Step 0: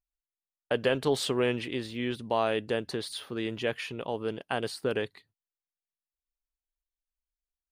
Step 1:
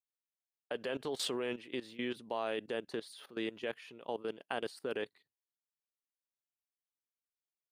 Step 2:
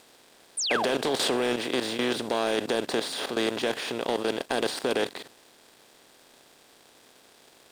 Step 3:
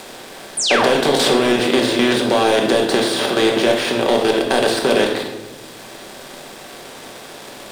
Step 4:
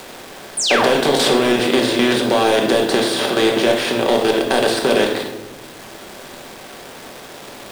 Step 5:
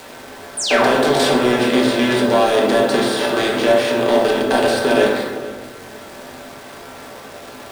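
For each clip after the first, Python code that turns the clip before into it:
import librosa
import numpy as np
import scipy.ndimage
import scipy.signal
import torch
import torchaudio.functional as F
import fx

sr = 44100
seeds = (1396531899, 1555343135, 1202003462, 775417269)

y1 = scipy.signal.sosfilt(scipy.signal.butter(2, 220.0, 'highpass', fs=sr, output='sos'), x)
y1 = fx.level_steps(y1, sr, step_db=17)
y1 = y1 * 10.0 ** (-2.0 / 20.0)
y2 = fx.bin_compress(y1, sr, power=0.4)
y2 = fx.leveller(y2, sr, passes=2)
y2 = fx.spec_paint(y2, sr, seeds[0], shape='fall', start_s=0.57, length_s=0.29, low_hz=530.0, high_hz=10000.0, level_db=-28.0)
y3 = fx.room_shoebox(y2, sr, seeds[1], volume_m3=310.0, walls='mixed', distance_m=1.1)
y3 = fx.band_squash(y3, sr, depth_pct=40)
y3 = y3 * 10.0 ** (8.5 / 20.0)
y4 = fx.delta_hold(y3, sr, step_db=-34.5)
y5 = y4 + 10.0 ** (-19.0 / 20.0) * np.pad(y4, (int(449 * sr / 1000.0), 0))[:len(y4)]
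y5 = fx.rev_fdn(y5, sr, rt60_s=1.1, lf_ratio=0.85, hf_ratio=0.3, size_ms=69.0, drr_db=-1.5)
y5 = y5 * 10.0 ** (-3.5 / 20.0)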